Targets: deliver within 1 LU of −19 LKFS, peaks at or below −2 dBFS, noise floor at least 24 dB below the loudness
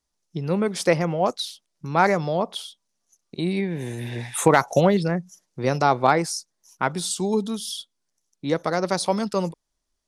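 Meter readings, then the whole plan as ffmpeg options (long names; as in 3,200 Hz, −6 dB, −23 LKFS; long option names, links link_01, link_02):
integrated loudness −23.5 LKFS; sample peak −5.0 dBFS; target loudness −19.0 LKFS
→ -af "volume=4.5dB,alimiter=limit=-2dB:level=0:latency=1"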